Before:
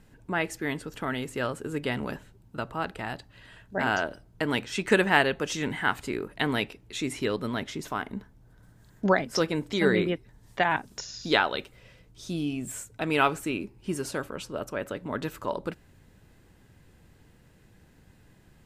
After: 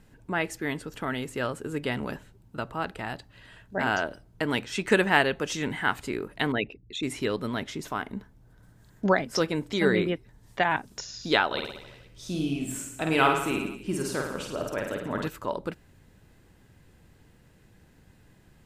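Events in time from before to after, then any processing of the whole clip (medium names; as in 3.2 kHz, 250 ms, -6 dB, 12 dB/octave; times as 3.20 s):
6.52–7.03 s: resonances exaggerated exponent 2
11.46–15.28 s: reverse bouncing-ball echo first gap 50 ms, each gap 1.1×, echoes 7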